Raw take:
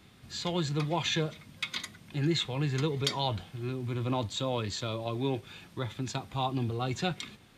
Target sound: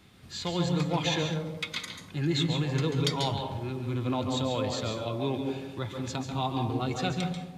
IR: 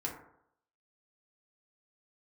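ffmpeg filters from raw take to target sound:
-filter_complex "[0:a]asplit=2[link_01][link_02];[1:a]atrim=start_sample=2205,asetrate=25578,aresample=44100,adelay=138[link_03];[link_02][link_03]afir=irnorm=-1:irlink=0,volume=-8.5dB[link_04];[link_01][link_04]amix=inputs=2:normalize=0"

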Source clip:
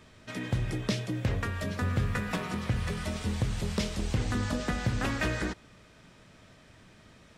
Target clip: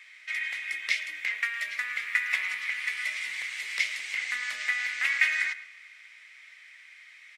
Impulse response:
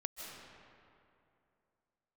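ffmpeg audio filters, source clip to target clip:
-filter_complex "[0:a]highpass=frequency=2100:width_type=q:width=10,asplit=2[link_01][link_02];[link_02]adelay=110,highpass=300,lowpass=3400,asoftclip=type=hard:threshold=-19dB,volume=-15dB[link_03];[link_01][link_03]amix=inputs=2:normalize=0,asplit=2[link_04][link_05];[1:a]atrim=start_sample=2205,asetrate=79380,aresample=44100,adelay=135[link_06];[link_05][link_06]afir=irnorm=-1:irlink=0,volume=-17.5dB[link_07];[link_04][link_07]amix=inputs=2:normalize=0"

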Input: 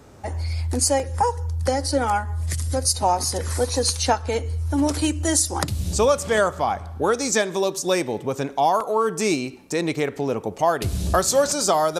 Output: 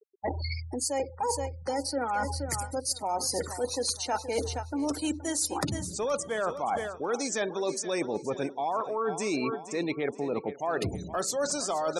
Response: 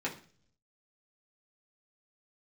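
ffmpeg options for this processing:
-filter_complex "[0:a]highpass=170,asplit=2[link_01][link_02];[1:a]atrim=start_sample=2205,atrim=end_sample=3528,asetrate=42336,aresample=44100[link_03];[link_02][link_03]afir=irnorm=-1:irlink=0,volume=-25dB[link_04];[link_01][link_04]amix=inputs=2:normalize=0,acontrast=52,afftfilt=real='re*gte(hypot(re,im),0.0631)':imag='im*gte(hypot(re,im),0.0631)':win_size=1024:overlap=0.75,aecho=1:1:473|946|1419:0.168|0.0537|0.0172,areverse,acompressor=threshold=-27dB:ratio=12,areverse"

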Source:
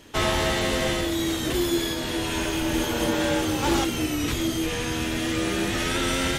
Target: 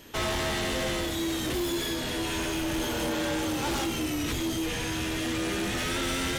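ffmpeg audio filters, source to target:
ffmpeg -i in.wav -af "bandreject=frequency=48.09:width_type=h:width=4,bandreject=frequency=96.18:width_type=h:width=4,bandreject=frequency=144.27:width_type=h:width=4,bandreject=frequency=192.36:width_type=h:width=4,bandreject=frequency=240.45:width_type=h:width=4,bandreject=frequency=288.54:width_type=h:width=4,bandreject=frequency=336.63:width_type=h:width=4,bandreject=frequency=384.72:width_type=h:width=4,bandreject=frequency=432.81:width_type=h:width=4,bandreject=frequency=480.9:width_type=h:width=4,bandreject=frequency=528.99:width_type=h:width=4,bandreject=frequency=577.08:width_type=h:width=4,bandreject=frequency=625.17:width_type=h:width=4,bandreject=frequency=673.26:width_type=h:width=4,bandreject=frequency=721.35:width_type=h:width=4,bandreject=frequency=769.44:width_type=h:width=4,bandreject=frequency=817.53:width_type=h:width=4,bandreject=frequency=865.62:width_type=h:width=4,bandreject=frequency=913.71:width_type=h:width=4,bandreject=frequency=961.8:width_type=h:width=4,bandreject=frequency=1009.89:width_type=h:width=4,bandreject=frequency=1057.98:width_type=h:width=4,bandreject=frequency=1106.07:width_type=h:width=4,bandreject=frequency=1154.16:width_type=h:width=4,bandreject=frequency=1202.25:width_type=h:width=4,bandreject=frequency=1250.34:width_type=h:width=4,bandreject=frequency=1298.43:width_type=h:width=4,bandreject=frequency=1346.52:width_type=h:width=4,asoftclip=type=tanh:threshold=-25.5dB,aeval=exprs='val(0)+0.00112*sin(2*PI*12000*n/s)':channel_layout=same" out.wav

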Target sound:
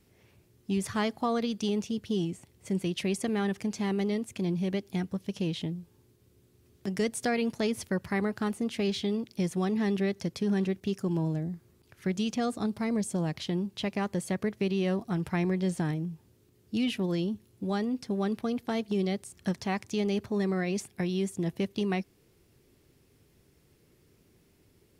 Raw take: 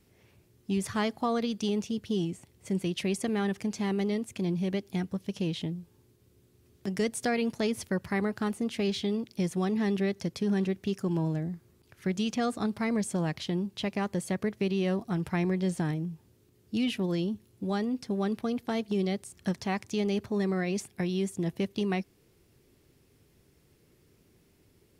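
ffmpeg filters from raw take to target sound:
ffmpeg -i in.wav -filter_complex "[0:a]asettb=1/sr,asplit=3[link_01][link_02][link_03];[link_01]atrim=end=10.804[link_04];[link_02]atrim=start=10.8:end=13.35,asetpts=PTS-STARTPTS,afade=type=in:duration=0.004:curve=qsin,afade=type=out:start_time=2.546:duration=0.004:curve=qsin,adynamicequalizer=threshold=0.00398:dfrequency=1700:dqfactor=0.71:tfrequency=1700:tqfactor=0.71:attack=5:release=100:ratio=0.375:range=3:mode=cutabove:tftype=bell[link_05];[link_03]atrim=start=13.346[link_06];[link_04][link_05]acrossfade=duration=0.004:curve1=hsin:curve2=qsin[link_07];[link_07][link_06]acrossfade=duration=0.004:curve1=qsin:curve2=hsin" out.wav

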